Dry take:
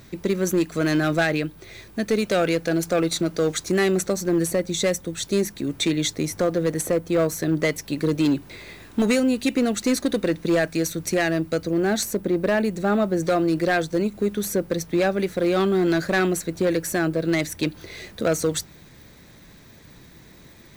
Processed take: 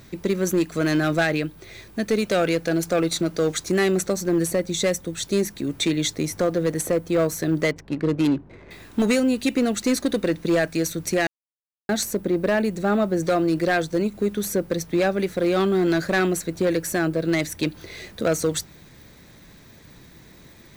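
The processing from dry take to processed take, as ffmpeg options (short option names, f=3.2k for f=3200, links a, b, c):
-filter_complex "[0:a]asettb=1/sr,asplit=3[a][b][c];[a]atrim=end=7.714[d];[b]atrim=start=7.71:end=8.71,asetpts=PTS-STARTPTS,afade=t=in:d=0.004:c=qsin,afade=t=out:st=0.996:d=0.004:c=qsin,adynamicsmooth=sensitivity=3.5:basefreq=780[e];[c]atrim=start=8.706[f];[d][e]acrossfade=d=0.004:c1=hsin:c2=qsin[g];[g][f]acrossfade=d=0.004:c1=qsin:c2=hsin,asplit=3[h][i][j];[h]atrim=end=11.27,asetpts=PTS-STARTPTS,afade=t=out:st=11.266:d=0.004:c=hsin[k];[i]atrim=start=11.27:end=11.89,asetpts=PTS-STARTPTS,volume=0[l];[j]atrim=start=11.89,asetpts=PTS-STARTPTS,afade=t=in:d=0.004:c=hsin[m];[k][l][m]concat=n=3:v=0:a=1"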